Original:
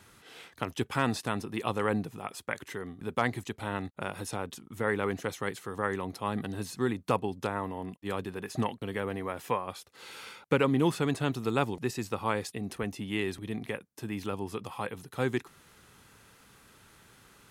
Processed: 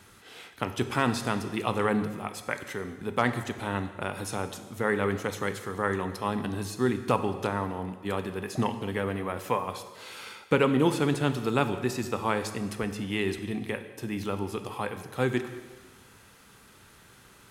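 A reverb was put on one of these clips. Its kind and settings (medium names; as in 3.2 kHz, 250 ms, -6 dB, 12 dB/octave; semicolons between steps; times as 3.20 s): plate-style reverb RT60 1.4 s, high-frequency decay 1×, pre-delay 0 ms, DRR 8.5 dB; trim +2.5 dB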